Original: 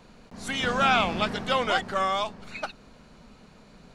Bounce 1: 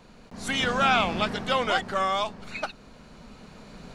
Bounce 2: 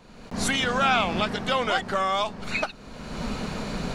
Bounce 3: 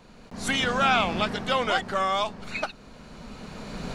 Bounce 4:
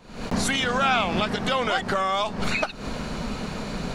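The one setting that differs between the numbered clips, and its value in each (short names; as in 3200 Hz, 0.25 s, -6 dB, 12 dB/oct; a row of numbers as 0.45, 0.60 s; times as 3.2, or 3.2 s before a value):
recorder AGC, rising by: 5.1, 33, 13, 89 dB/s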